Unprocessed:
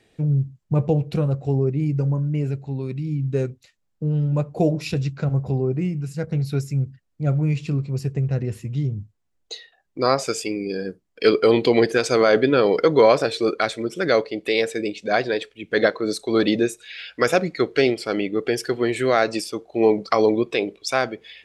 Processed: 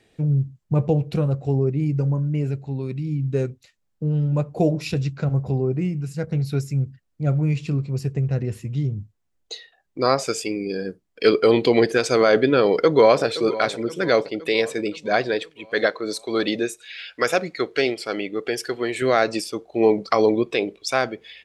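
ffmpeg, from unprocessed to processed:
-filter_complex "[0:a]asplit=2[a][b];[b]afade=t=in:st=12.61:d=0.01,afade=t=out:st=13.24:d=0.01,aecho=0:1:520|1040|1560|2080|2600|3120:0.177828|0.106697|0.0640181|0.0384108|0.0230465|0.0138279[c];[a][c]amix=inputs=2:normalize=0,asettb=1/sr,asplit=3[d][e][f];[d]atrim=end=15.504[g];[e]atrim=start=15.5:end=19.02,asetpts=PTS-STARTPTS,afade=t=in:d=0.004:c=qsin,afade=t=out:st=3.516:d=0.004:c=qsin,lowshelf=f=320:g=-9[h];[f]atrim=start=19.016[i];[g][h]acrossfade=d=0.004:c1=hsin:c2=qsin[j];[j][i]acrossfade=d=0.004:c1=qsin:c2=hsin"

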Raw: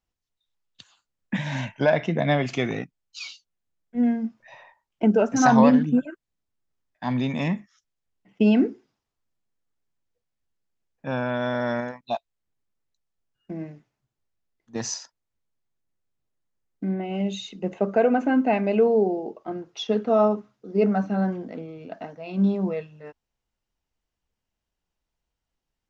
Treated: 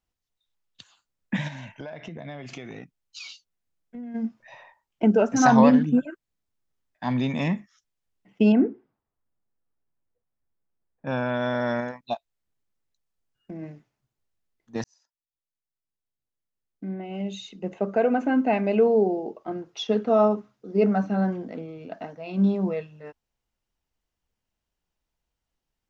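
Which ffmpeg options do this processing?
-filter_complex "[0:a]asplit=3[a][b][c];[a]afade=t=out:st=1.47:d=0.02[d];[b]acompressor=threshold=-35dB:ratio=8:attack=3.2:release=140:knee=1:detection=peak,afade=t=in:st=1.47:d=0.02,afade=t=out:st=4.14:d=0.02[e];[c]afade=t=in:st=4.14:d=0.02[f];[d][e][f]amix=inputs=3:normalize=0,asettb=1/sr,asplit=3[g][h][i];[g]atrim=end=8.524[j];[h]atrim=start=8.52:end=11.07,asetpts=PTS-STARTPTS,afade=t=in:d=0.004:c=qsin,afade=t=out:st=2.546:d=0.004:c=qsin,lowpass=1.5k[k];[i]atrim=start=11.066[l];[j][k]acrossfade=d=0.004:c1=hsin:c2=qsin[m];[m][l]acrossfade=d=0.004:c1=qsin:c2=hsin,asplit=3[n][o][p];[n]afade=t=out:st=12.13:d=0.02[q];[o]acompressor=threshold=-33dB:ratio=6:attack=3.2:release=140:knee=1:detection=peak,afade=t=in:st=12.13:d=0.02,afade=t=out:st=13.62:d=0.02[r];[p]afade=t=in:st=13.62:d=0.02[s];[q][r][s]amix=inputs=3:normalize=0,asplit=2[t][u];[t]atrim=end=14.84,asetpts=PTS-STARTPTS,afade=t=out:st=14.836:d=0.004:c=hsin[v];[u]atrim=start=14.84,asetpts=PTS-STARTPTS,afade=t=in:d=4.09[w];[v][w]concat=n=2:v=0:a=1"

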